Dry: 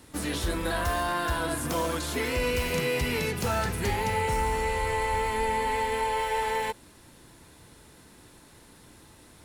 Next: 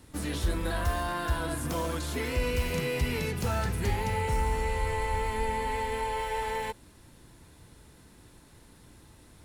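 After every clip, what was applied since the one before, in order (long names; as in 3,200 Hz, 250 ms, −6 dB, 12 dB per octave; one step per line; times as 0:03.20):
low-shelf EQ 160 Hz +8.5 dB
level −4.5 dB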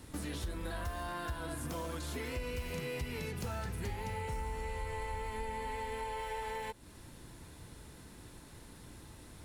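downward compressor 3 to 1, threshold −42 dBFS, peak gain reduction 14.5 dB
level +2 dB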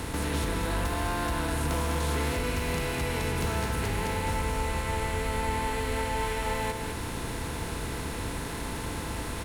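compressor on every frequency bin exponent 0.4
in parallel at −12 dB: soft clipping −30 dBFS, distortion −16 dB
on the sum: single-tap delay 203 ms −5.5 dB
level +2 dB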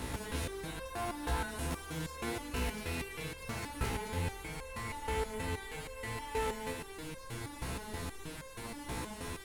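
step-sequenced resonator 6.3 Hz 63–530 Hz
level +3 dB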